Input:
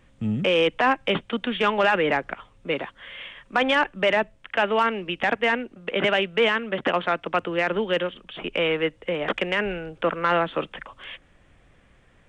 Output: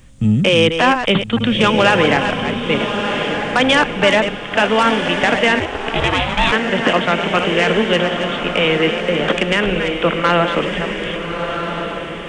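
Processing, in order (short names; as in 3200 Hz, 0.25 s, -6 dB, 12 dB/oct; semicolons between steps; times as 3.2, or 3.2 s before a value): reverse delay 0.231 s, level -8 dB; tone controls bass +8 dB, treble +14 dB; on a send: diffused feedback echo 1.298 s, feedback 43%, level -6 dB; 5.59–6.51 on the sum: ring modulator 140 Hz -> 490 Hz; gain +5.5 dB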